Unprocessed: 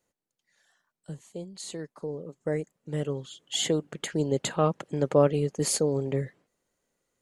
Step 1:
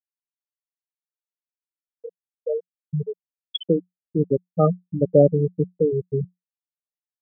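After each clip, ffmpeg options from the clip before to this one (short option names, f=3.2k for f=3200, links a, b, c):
-af "afftfilt=real='re*gte(hypot(re,im),0.282)':imag='im*gte(hypot(re,im),0.282)':win_size=1024:overlap=0.75,equalizer=f=180:w=7.7:g=9.5,volume=6.5dB"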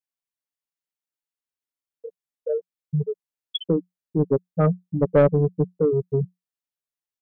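-af "aecho=1:1:7.1:0.33,asoftclip=type=tanh:threshold=-9.5dB"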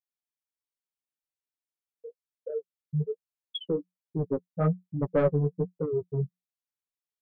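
-af "flanger=delay=7.3:depth=7.8:regen=13:speed=1.2:shape=triangular,volume=-3.5dB"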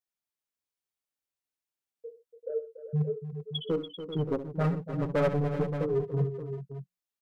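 -af "volume=23dB,asoftclip=hard,volume=-23dB,aecho=1:1:66|73|124|287|389|575:0.2|0.133|0.1|0.266|0.266|0.282"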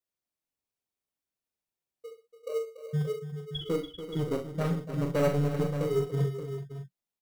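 -filter_complex "[0:a]asplit=2[a][b];[b]acrusher=samples=26:mix=1:aa=0.000001,volume=-9dB[c];[a][c]amix=inputs=2:normalize=0,asplit=2[d][e];[e]adelay=42,volume=-6dB[f];[d][f]amix=inputs=2:normalize=0,volume=-3dB"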